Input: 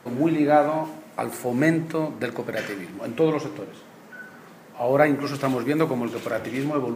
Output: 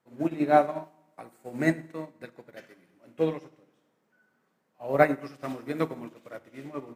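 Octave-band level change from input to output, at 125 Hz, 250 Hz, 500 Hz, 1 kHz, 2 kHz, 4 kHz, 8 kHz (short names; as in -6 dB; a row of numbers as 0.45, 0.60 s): -8.0 dB, -7.5 dB, -5.5 dB, -3.5 dB, -5.5 dB, -10.5 dB, under -10 dB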